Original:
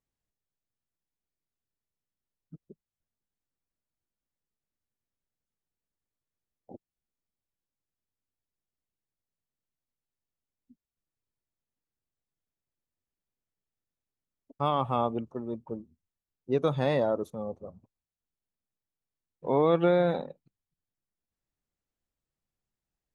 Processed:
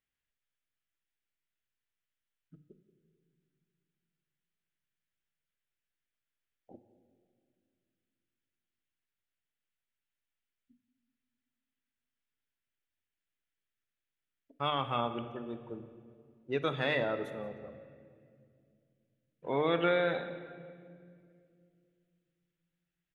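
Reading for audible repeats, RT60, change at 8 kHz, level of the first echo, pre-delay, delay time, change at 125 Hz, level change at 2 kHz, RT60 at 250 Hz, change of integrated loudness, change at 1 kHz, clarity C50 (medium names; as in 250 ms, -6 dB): 1, 2.2 s, no reading, -19.0 dB, 3 ms, 181 ms, -7.5 dB, +5.5 dB, 3.3 s, -5.0 dB, -4.5 dB, 10.5 dB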